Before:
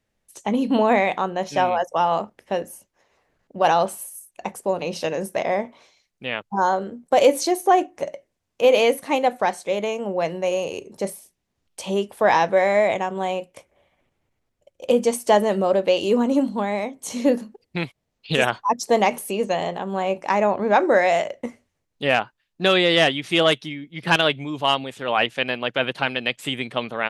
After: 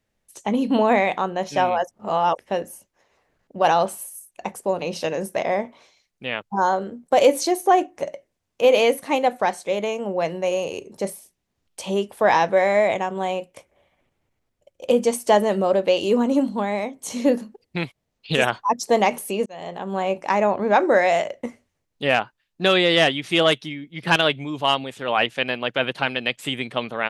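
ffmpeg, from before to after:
-filter_complex "[0:a]asplit=4[s0][s1][s2][s3];[s0]atrim=end=1.912[s4];[s1]atrim=start=1.908:end=2.382,asetpts=PTS-STARTPTS,areverse[s5];[s2]atrim=start=2.378:end=19.46,asetpts=PTS-STARTPTS,afade=t=out:st=17.078:d=0.004:c=hsin[s6];[s3]atrim=start=19.46,asetpts=PTS-STARTPTS,afade=t=in:d=0.46[s7];[s4][s5]acrossfade=d=0.004:c1=hsin:c2=hsin[s8];[s6][s7]concat=n=2:v=0:a=1[s9];[s8][s9]acrossfade=d=0.004:c1=hsin:c2=hsin"

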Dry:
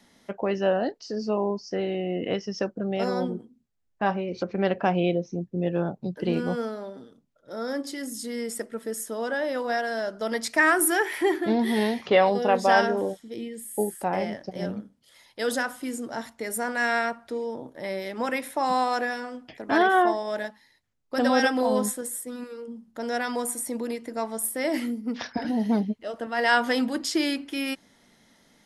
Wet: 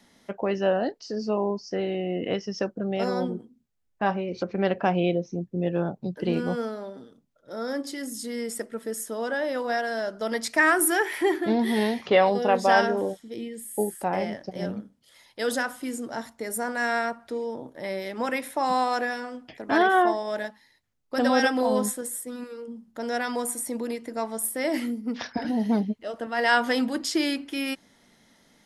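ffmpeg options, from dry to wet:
-filter_complex "[0:a]asettb=1/sr,asplit=3[s0][s1][s2];[s0]atrim=end=16.204[s3];[s1]atrim=start=16.2:end=17.2,asetpts=PTS-STARTPTS,afade=t=in:d=0.004:c=qsin,afade=t=out:st=0.996:d=0.004:c=qsin,equalizer=f=2600:t=o:w=1.2:g=-4.5[s4];[s2]atrim=start=17.196[s5];[s3][s4]acrossfade=d=0.004:c1=hsin:c2=qsin[s6];[s6][s5]acrossfade=d=0.004:c1=qsin:c2=hsin"

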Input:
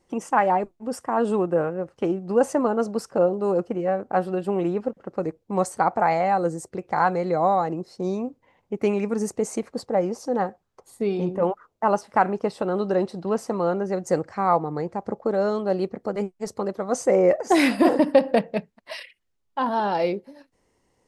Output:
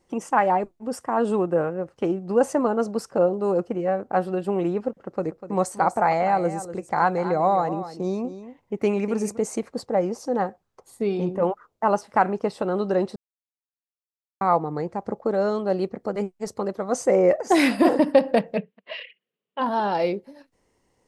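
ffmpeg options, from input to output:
-filter_complex "[0:a]asplit=3[s0][s1][s2];[s0]afade=t=out:st=5.26:d=0.02[s3];[s1]aecho=1:1:246:0.237,afade=t=in:st=5.26:d=0.02,afade=t=out:st=9.36:d=0.02[s4];[s2]afade=t=in:st=9.36:d=0.02[s5];[s3][s4][s5]amix=inputs=3:normalize=0,asplit=3[s6][s7][s8];[s6]afade=t=out:st=18.56:d=0.02[s9];[s7]highpass=f=160:w=0.5412,highpass=f=160:w=1.3066,equalizer=f=190:t=q:w=4:g=4,equalizer=f=300:t=q:w=4:g=-5,equalizer=f=460:t=q:w=4:g=10,equalizer=f=860:t=q:w=4:g=-8,equalizer=f=1400:t=q:w=4:g=-4,equalizer=f=2900:t=q:w=4:g=7,lowpass=f=3300:w=0.5412,lowpass=f=3300:w=1.3066,afade=t=in:st=18.56:d=0.02,afade=t=out:st=19.6:d=0.02[s10];[s8]afade=t=in:st=19.6:d=0.02[s11];[s9][s10][s11]amix=inputs=3:normalize=0,asplit=3[s12][s13][s14];[s12]atrim=end=13.16,asetpts=PTS-STARTPTS,afade=t=out:st=13.156:d=0.004:c=hsin[s15];[s13]atrim=start=13.16:end=14.41,asetpts=PTS-STARTPTS,volume=0[s16];[s14]atrim=start=14.41,asetpts=PTS-STARTPTS,afade=t=in:d=0.004:c=hsin[s17];[s15][s16][s17]concat=n=3:v=0:a=1"

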